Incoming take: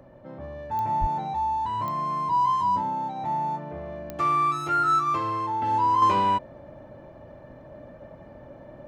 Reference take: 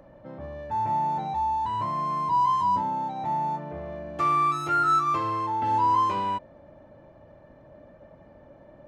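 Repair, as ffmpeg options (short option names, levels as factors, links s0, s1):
-filter_complex "[0:a]adeclick=t=4,bandreject=f=125:t=h:w=4,bandreject=f=250:t=h:w=4,bandreject=f=375:t=h:w=4,bandreject=f=500:t=h:w=4,asplit=3[s0][s1][s2];[s0]afade=t=out:st=1:d=0.02[s3];[s1]highpass=f=140:w=0.5412,highpass=f=140:w=1.3066,afade=t=in:st=1:d=0.02,afade=t=out:st=1.12:d=0.02[s4];[s2]afade=t=in:st=1.12:d=0.02[s5];[s3][s4][s5]amix=inputs=3:normalize=0,asetnsamples=n=441:p=0,asendcmd='6.02 volume volume -5.5dB',volume=1"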